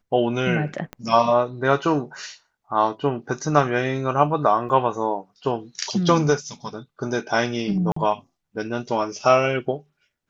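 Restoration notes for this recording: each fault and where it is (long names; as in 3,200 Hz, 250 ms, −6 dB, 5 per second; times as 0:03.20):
0:00.93: click −19 dBFS
0:04.69: drop-out 3.4 ms
0:07.92–0:07.96: drop-out 44 ms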